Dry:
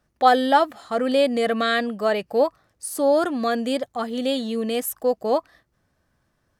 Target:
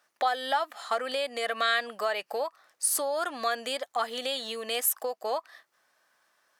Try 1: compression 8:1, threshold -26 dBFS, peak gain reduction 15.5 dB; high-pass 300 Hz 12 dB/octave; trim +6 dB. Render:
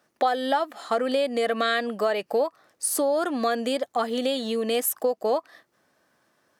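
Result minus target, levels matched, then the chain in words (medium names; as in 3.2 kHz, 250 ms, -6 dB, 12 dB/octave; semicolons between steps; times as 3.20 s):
250 Hz band +12.0 dB
compression 8:1, threshold -26 dBFS, peak gain reduction 15.5 dB; high-pass 840 Hz 12 dB/octave; trim +6 dB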